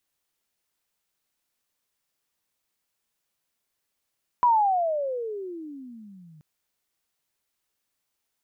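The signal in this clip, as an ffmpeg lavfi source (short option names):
-f lavfi -i "aevalsrc='pow(10,(-15-32.5*t/1.98)/20)*sin(2*PI*1000*1.98/(-33*log(2)/12)*(exp(-33*log(2)/12*t/1.98)-1))':d=1.98:s=44100"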